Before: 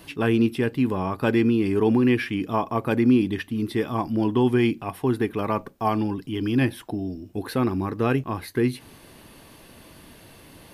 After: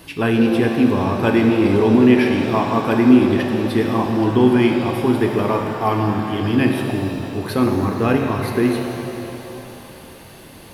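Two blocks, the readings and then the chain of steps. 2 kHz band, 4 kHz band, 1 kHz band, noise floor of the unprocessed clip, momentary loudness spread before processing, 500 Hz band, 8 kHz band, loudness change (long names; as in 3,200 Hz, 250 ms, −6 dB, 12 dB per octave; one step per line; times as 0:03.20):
+6.5 dB, +7.0 dB, +6.5 dB, −49 dBFS, 8 LU, +7.0 dB, can't be measured, +6.5 dB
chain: reverb with rising layers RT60 3 s, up +7 semitones, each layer −8 dB, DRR 2 dB
level +4 dB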